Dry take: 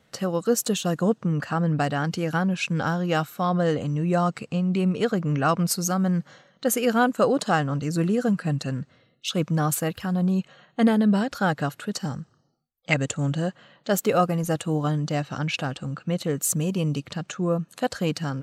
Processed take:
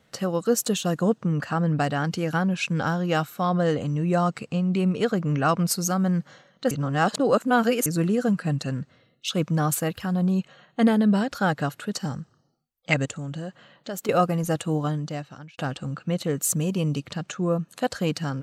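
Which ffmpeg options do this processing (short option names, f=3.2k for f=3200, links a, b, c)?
-filter_complex "[0:a]asettb=1/sr,asplit=3[a][b][c];[a]atrim=end=13.054[d];[b]atrim=start=13.05:end=14.09,asetpts=PTS-STARTPTS,afade=t=in:d=0.004:c=qsin,afade=t=out:st=1.036:d=0.004:c=qsin,acompressor=threshold=-31dB:ratio=3:attack=3.2:release=140:knee=1:detection=peak[e];[c]atrim=start=14.086[f];[d][e]acrossfade=d=0.004:c1=hsin:c2=qsin[g];[g][f]acrossfade=d=0.004:c1=qsin:c2=hsin,asplit=4[h][i][j][k];[h]atrim=end=6.712[l];[i]atrim=start=6.708:end=7.862,asetpts=PTS-STARTPTS,areverse[m];[j]atrim=start=7.858:end=15.58,asetpts=PTS-STARTPTS,afade=t=out:st=6.872:d=0.85[n];[k]atrim=start=15.58,asetpts=PTS-STARTPTS,afade=t=in:d=0.004:c=hsin[o];[l][m]acrossfade=d=0.004:c1=hsin:c2=hsin[p];[n][o]concat=n=2:v=0:a=1[q];[p][q]acrossfade=d=0.004:c1=hsin:c2=hsin"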